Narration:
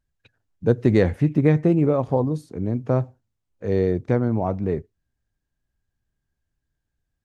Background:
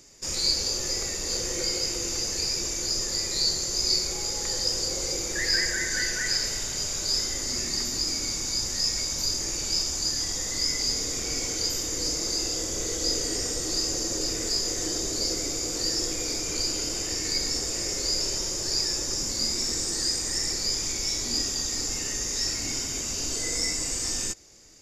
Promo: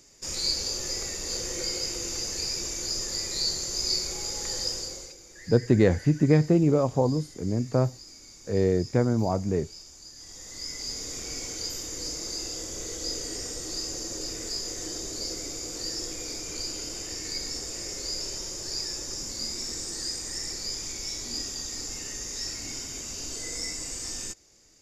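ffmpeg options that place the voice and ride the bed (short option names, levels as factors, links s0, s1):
-filter_complex "[0:a]adelay=4850,volume=0.75[s0];[1:a]volume=3.35,afade=t=out:st=4.63:d=0.52:silence=0.149624,afade=t=in:st=10.14:d=1:silence=0.211349[s1];[s0][s1]amix=inputs=2:normalize=0"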